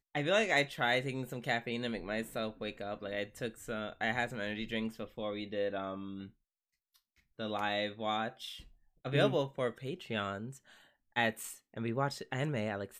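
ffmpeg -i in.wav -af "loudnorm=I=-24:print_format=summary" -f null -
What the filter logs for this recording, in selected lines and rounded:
Input Integrated:    -35.7 LUFS
Input True Peak:     -14.8 dBTP
Input LRA:             4.0 LU
Input Threshold:     -46.1 LUFS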